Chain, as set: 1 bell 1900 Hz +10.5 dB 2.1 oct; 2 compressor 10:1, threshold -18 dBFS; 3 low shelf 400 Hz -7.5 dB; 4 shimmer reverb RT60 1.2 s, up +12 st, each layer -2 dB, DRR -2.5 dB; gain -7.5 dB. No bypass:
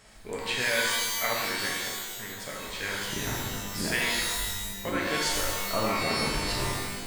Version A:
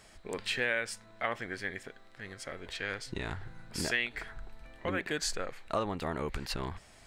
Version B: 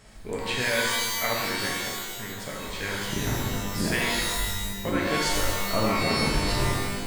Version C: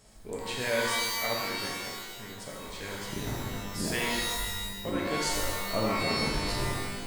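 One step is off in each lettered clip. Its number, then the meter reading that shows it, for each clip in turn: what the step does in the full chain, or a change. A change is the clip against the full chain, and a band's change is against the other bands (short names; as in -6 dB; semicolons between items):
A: 4, 8 kHz band -6.0 dB; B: 3, 125 Hz band +5.0 dB; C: 1, 8 kHz band -3.5 dB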